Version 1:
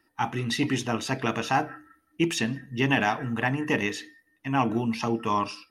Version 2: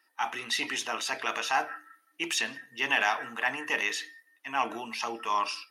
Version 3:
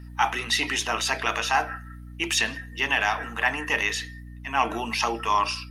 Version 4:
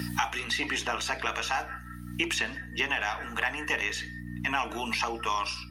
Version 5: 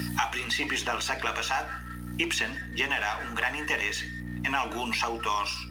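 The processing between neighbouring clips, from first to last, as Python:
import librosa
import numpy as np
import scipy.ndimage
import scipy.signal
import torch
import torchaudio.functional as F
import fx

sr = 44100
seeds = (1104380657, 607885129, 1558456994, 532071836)

y1 = scipy.signal.sosfilt(scipy.signal.bessel(2, 1000.0, 'highpass', norm='mag', fs=sr, output='sos'), x)
y1 = fx.transient(y1, sr, attack_db=-2, sustain_db=3)
y1 = y1 * librosa.db_to_amplitude(2.0)
y2 = fx.rider(y1, sr, range_db=10, speed_s=0.5)
y2 = fx.add_hum(y2, sr, base_hz=60, snr_db=14)
y2 = y2 * librosa.db_to_amplitude(5.5)
y3 = fx.band_squash(y2, sr, depth_pct=100)
y3 = y3 * librosa.db_to_amplitude(-6.0)
y4 = fx.law_mismatch(y3, sr, coded='mu')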